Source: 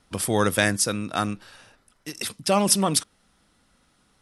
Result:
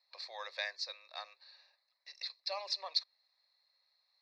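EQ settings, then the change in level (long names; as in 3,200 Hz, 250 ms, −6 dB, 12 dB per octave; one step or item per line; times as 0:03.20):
Chebyshev high-pass with heavy ripple 390 Hz, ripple 6 dB
transistor ladder low-pass 4,300 Hz, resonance 90%
phaser with its sweep stopped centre 2,100 Hz, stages 8
0.0 dB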